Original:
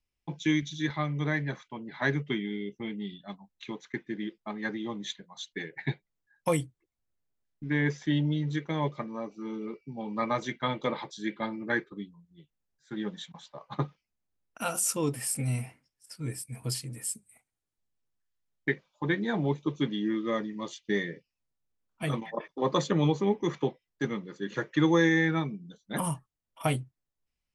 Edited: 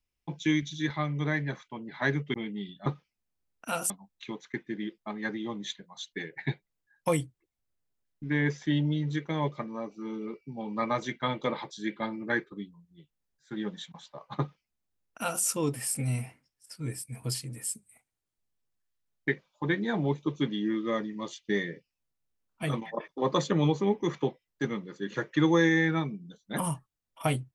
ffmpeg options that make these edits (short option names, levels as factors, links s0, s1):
-filter_complex "[0:a]asplit=4[s0][s1][s2][s3];[s0]atrim=end=2.342[s4];[s1]atrim=start=2.778:end=3.302[s5];[s2]atrim=start=13.788:end=14.832[s6];[s3]atrim=start=3.298[s7];[s4][s5]acrossfade=d=0.004:c1=hsin:c2=hsin[s8];[s8][s6]acrossfade=d=0.004:c1=hsin:c2=hsin[s9];[s9][s7]acrossfade=d=0.004:c1=hsin:c2=hsin"